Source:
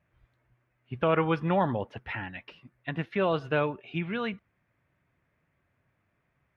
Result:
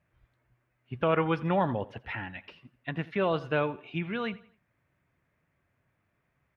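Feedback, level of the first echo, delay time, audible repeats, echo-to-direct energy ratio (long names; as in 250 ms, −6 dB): 38%, −20.0 dB, 85 ms, 2, −19.5 dB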